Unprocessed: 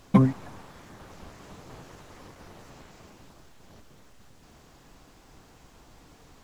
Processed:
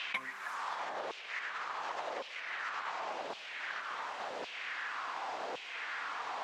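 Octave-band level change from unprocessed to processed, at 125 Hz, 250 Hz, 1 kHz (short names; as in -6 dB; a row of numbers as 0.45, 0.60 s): under -35 dB, -28.0 dB, +4.0 dB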